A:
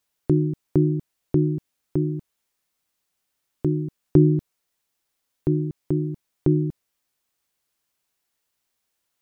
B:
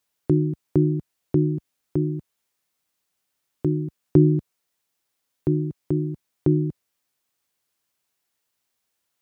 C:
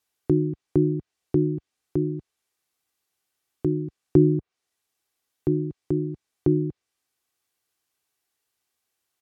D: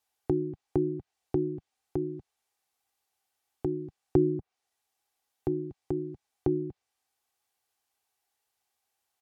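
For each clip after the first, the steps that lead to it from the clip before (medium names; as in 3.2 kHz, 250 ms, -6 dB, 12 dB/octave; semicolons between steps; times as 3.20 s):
high-pass 60 Hz
low-pass that closes with the level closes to 1.2 kHz, closed at -15.5 dBFS; comb 2.6 ms, depth 31%; trim -1.5 dB
graphic EQ with 31 bands 160 Hz -11 dB, 315 Hz -6 dB, 800 Hz +10 dB; trim -2.5 dB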